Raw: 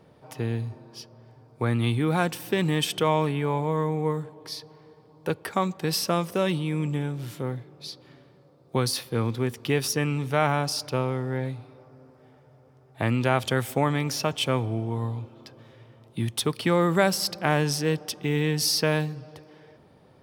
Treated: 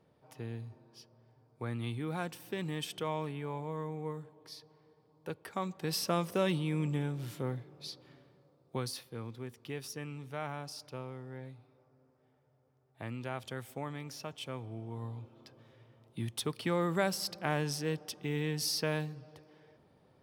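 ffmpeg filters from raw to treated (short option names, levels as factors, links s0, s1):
-af "volume=1.19,afade=t=in:st=5.46:d=0.84:silence=0.421697,afade=t=out:st=7.85:d=1.32:silence=0.281838,afade=t=in:st=14.59:d=0.8:silence=0.446684"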